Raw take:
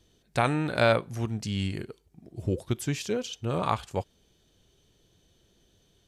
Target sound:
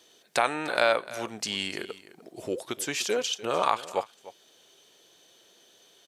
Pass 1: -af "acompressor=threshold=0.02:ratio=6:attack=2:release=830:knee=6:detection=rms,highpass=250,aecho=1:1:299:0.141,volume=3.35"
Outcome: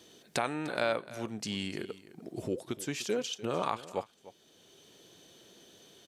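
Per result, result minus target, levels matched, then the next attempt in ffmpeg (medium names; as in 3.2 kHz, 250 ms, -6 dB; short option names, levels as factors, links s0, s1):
compression: peak gain reduction +8.5 dB; 250 Hz band +7.5 dB
-af "acompressor=threshold=0.0668:ratio=6:attack=2:release=830:knee=6:detection=rms,highpass=250,aecho=1:1:299:0.141,volume=3.35"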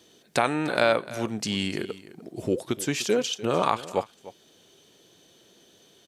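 250 Hz band +7.0 dB
-af "acompressor=threshold=0.0668:ratio=6:attack=2:release=830:knee=6:detection=rms,highpass=520,aecho=1:1:299:0.141,volume=3.35"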